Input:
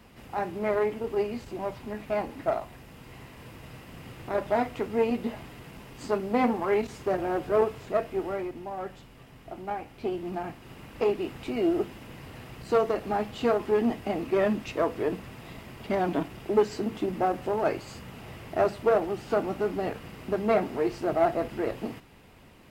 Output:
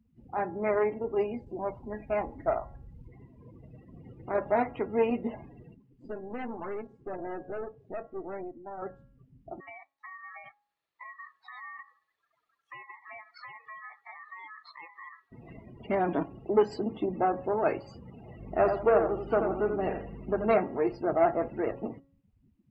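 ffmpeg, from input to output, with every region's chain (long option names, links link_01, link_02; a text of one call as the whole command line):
ffmpeg -i in.wav -filter_complex "[0:a]asettb=1/sr,asplit=3[link_01][link_02][link_03];[link_01]atrim=end=1.464[link_04];[link_02]atrim=start=1.46:end=3.08,asetpts=PTS-STARTPTS,afade=type=in:duration=0.004:curve=qsin,afade=type=out:start_time=1.616:duration=0.004:curve=qsin,asubboost=boost=9:cutoff=95,acrusher=bits=7:mix=0:aa=0.5[link_05];[link_03]atrim=start=3.076[link_06];[link_04][link_05]acrossfade=duration=0.004:curve1=hsin:curve2=qsin[link_07];[link_07][link_06]acrossfade=duration=0.004:curve1=qsin:curve2=hsin,asettb=1/sr,asplit=3[link_08][link_09][link_10];[link_08]atrim=end=5.744[link_11];[link_09]atrim=start=5.74:end=8.82,asetpts=PTS-STARTPTS,afade=type=in:duration=0.004:curve=qsin,afade=type=out:start_time=3.076:duration=0.004:curve=qsin,highshelf=frequency=7800:gain=-10.5,acrossover=split=140|1200[link_12][link_13][link_14];[link_12]acompressor=threshold=-52dB:ratio=4[link_15];[link_13]acompressor=threshold=-26dB:ratio=4[link_16];[link_14]acompressor=threshold=-39dB:ratio=4[link_17];[link_15][link_16][link_17]amix=inputs=3:normalize=0,aeval=exprs='(tanh(39.8*val(0)+0.8)-tanh(0.8))/39.8':channel_layout=same[link_18];[link_10]atrim=start=8.816[link_19];[link_11][link_18]acrossfade=duration=0.004:curve1=hsin:curve2=qsin[link_20];[link_20][link_19]acrossfade=duration=0.004:curve1=qsin:curve2=hsin,asettb=1/sr,asplit=3[link_21][link_22][link_23];[link_21]atrim=end=9.604[link_24];[link_22]atrim=start=9.6:end=15.32,asetpts=PTS-STARTPTS,afade=type=in:duration=0.004:curve=qsin,afade=type=out:start_time=5.716:duration=0.004:curve=qsin,highpass=frequency=530:poles=1,acompressor=threshold=-37dB:ratio=10:attack=3.2:release=140:knee=1:detection=peak,aeval=exprs='val(0)*sin(2*PI*1500*n/s)':channel_layout=same[link_25];[link_23]atrim=start=15.316[link_26];[link_24][link_25]acrossfade=duration=0.004:curve1=hsin:curve2=qsin[link_27];[link_27][link_26]acrossfade=duration=0.004:curve1=qsin:curve2=hsin,asettb=1/sr,asplit=3[link_28][link_29][link_30];[link_28]atrim=end=18.394[link_31];[link_29]atrim=start=18.39:end=20.54,asetpts=PTS-STARTPTS,afade=type=in:duration=0.004:curve=qsin,afade=type=out:start_time=2.146:duration=0.004:curve=qsin,aeval=exprs='val(0)+0.00891*(sin(2*PI*50*n/s)+sin(2*PI*2*50*n/s)/2+sin(2*PI*3*50*n/s)/3+sin(2*PI*4*50*n/s)/4+sin(2*PI*5*50*n/s)/5)':channel_layout=same,aecho=1:1:85|170|255|340:0.501|0.15|0.0451|0.0135,atrim=end_sample=94815[link_32];[link_30]atrim=start=20.536[link_33];[link_31][link_32]acrossfade=duration=0.004:curve1=hsin:curve2=qsin[link_34];[link_34][link_33]acrossfade=duration=0.004:curve1=qsin:curve2=hsin,afftdn=noise_reduction=35:noise_floor=-41,lowshelf=frequency=190:gain=-4.5,bandreject=frequency=275.2:width_type=h:width=4,bandreject=frequency=550.4:width_type=h:width=4,bandreject=frequency=825.6:width_type=h:width=4,bandreject=frequency=1100.8:width_type=h:width=4,bandreject=frequency=1376:width_type=h:width=4,bandreject=frequency=1651.2:width_type=h:width=4,bandreject=frequency=1926.4:width_type=h:width=4" out.wav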